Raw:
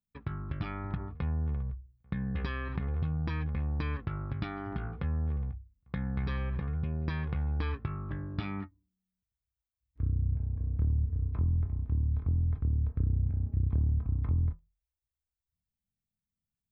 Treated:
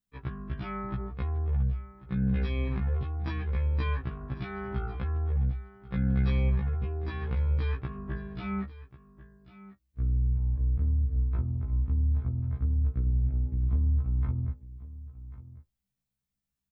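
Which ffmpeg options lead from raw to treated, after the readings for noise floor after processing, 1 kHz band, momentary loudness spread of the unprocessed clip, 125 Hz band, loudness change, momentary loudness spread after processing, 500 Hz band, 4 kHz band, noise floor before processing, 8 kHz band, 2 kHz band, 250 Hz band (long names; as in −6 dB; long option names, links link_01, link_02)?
below −85 dBFS, +1.5 dB, 8 LU, +2.0 dB, +2.5 dB, 11 LU, +4.5 dB, +1.5 dB, below −85 dBFS, can't be measured, +0.5 dB, +3.0 dB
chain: -af "alimiter=limit=-24dB:level=0:latency=1:release=150,aecho=1:1:1092:0.141,afftfilt=real='re*1.73*eq(mod(b,3),0)':imag='im*1.73*eq(mod(b,3),0)':win_size=2048:overlap=0.75,volume=5.5dB"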